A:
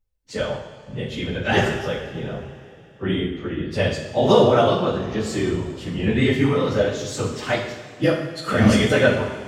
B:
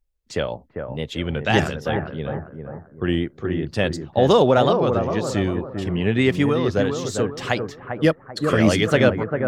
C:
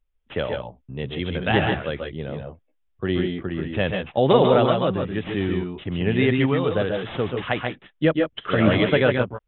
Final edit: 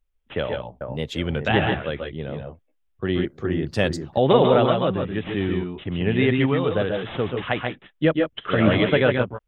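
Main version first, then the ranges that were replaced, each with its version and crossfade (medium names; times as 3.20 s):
C
0.81–1.48 s: from B
3.25–4.18 s: from B
not used: A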